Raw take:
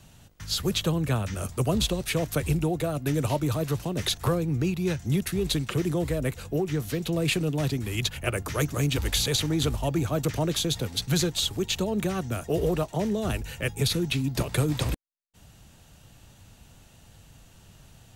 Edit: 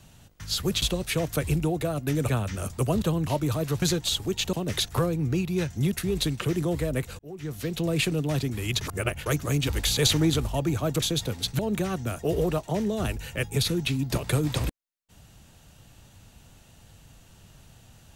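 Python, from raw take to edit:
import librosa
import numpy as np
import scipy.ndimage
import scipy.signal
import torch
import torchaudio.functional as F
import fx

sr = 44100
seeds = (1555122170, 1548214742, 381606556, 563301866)

y = fx.edit(x, sr, fx.swap(start_s=0.82, length_s=0.25, other_s=1.81, other_length_s=1.46),
    fx.fade_in_span(start_s=6.48, length_s=0.56),
    fx.reverse_span(start_s=8.1, length_s=0.45),
    fx.clip_gain(start_s=9.28, length_s=0.31, db=4.0),
    fx.cut(start_s=10.31, length_s=0.25),
    fx.move(start_s=11.13, length_s=0.71, to_s=3.82), tone=tone)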